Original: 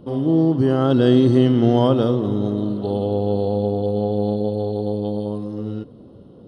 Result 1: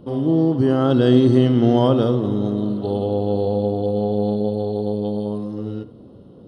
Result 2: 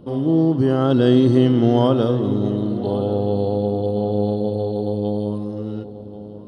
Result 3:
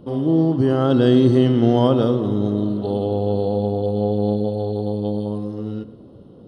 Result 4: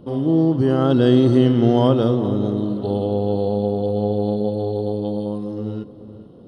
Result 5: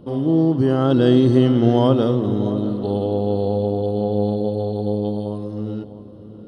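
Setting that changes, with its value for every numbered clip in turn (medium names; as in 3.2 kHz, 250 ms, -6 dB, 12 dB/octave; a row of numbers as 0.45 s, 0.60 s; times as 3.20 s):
filtered feedback delay, time: 72 ms, 1086 ms, 116 ms, 429 ms, 652 ms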